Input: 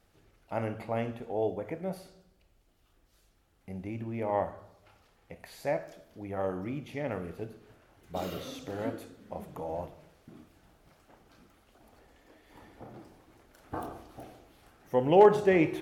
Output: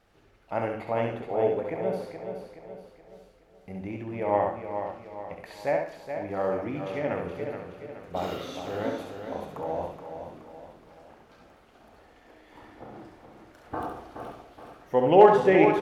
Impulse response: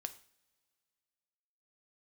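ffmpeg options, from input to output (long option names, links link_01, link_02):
-filter_complex "[0:a]lowpass=frequency=2800:poles=1,lowshelf=frequency=300:gain=-7,aecho=1:1:423|846|1269|1692|2115:0.398|0.179|0.0806|0.0363|0.0163,asplit=2[link_01][link_02];[1:a]atrim=start_sample=2205,adelay=68[link_03];[link_02][link_03]afir=irnorm=-1:irlink=0,volume=-1.5dB[link_04];[link_01][link_04]amix=inputs=2:normalize=0,volume=5.5dB"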